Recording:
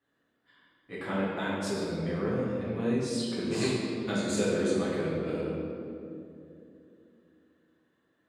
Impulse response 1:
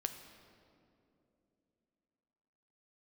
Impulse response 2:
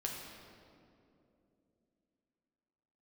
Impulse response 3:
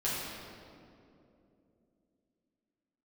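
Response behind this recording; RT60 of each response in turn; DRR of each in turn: 3; 2.9, 2.8, 2.8 seconds; 6.5, −1.5, −9.5 decibels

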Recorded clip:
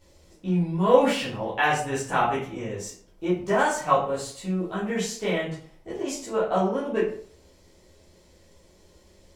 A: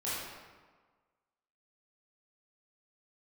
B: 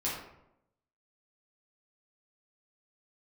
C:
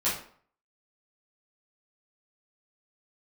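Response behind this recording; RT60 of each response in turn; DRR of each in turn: C; 1.5, 0.80, 0.55 seconds; −10.5, −7.5, −10.5 decibels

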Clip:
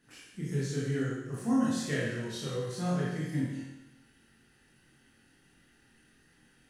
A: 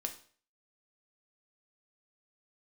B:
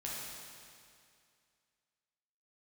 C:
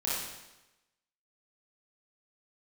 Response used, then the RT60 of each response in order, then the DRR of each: C; 0.45, 2.3, 1.0 seconds; 4.0, −6.0, −8.0 decibels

